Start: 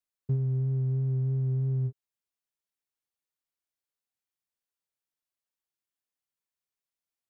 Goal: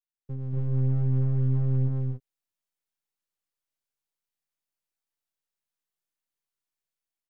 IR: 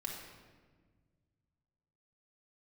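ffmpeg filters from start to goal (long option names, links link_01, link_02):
-af "aeval=exprs='if(lt(val(0),0),0.251*val(0),val(0))':channel_layout=same,dynaudnorm=framelen=100:gausssize=7:maxgain=9dB,aecho=1:1:236.2|274.1:0.708|0.794,volume=-9dB"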